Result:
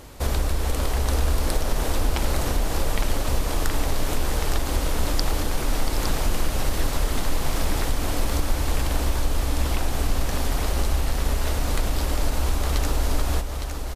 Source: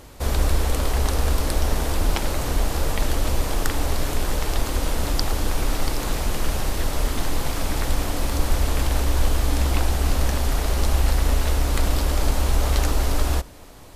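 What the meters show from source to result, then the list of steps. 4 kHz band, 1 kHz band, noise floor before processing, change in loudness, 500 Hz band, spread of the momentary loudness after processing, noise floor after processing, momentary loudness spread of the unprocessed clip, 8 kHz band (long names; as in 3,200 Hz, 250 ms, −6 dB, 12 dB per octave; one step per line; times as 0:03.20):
−1.0 dB, −1.0 dB, −41 dBFS, −2.0 dB, −1.0 dB, 2 LU, −27 dBFS, 4 LU, −1.0 dB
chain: downward compressor, threshold −19 dBFS, peak gain reduction 7 dB
on a send: single-tap delay 861 ms −6.5 dB
on the sum: level +1 dB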